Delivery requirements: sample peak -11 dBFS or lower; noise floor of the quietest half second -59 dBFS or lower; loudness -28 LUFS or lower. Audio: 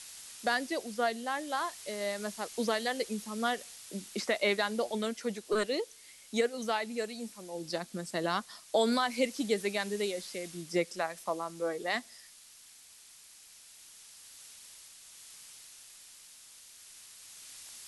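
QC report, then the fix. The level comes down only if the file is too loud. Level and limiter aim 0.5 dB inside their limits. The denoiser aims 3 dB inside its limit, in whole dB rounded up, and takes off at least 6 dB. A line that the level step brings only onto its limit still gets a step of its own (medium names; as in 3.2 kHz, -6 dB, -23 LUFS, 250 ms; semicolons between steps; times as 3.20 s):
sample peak -15.5 dBFS: pass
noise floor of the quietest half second -56 dBFS: fail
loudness -33.5 LUFS: pass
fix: noise reduction 6 dB, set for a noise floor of -56 dBFS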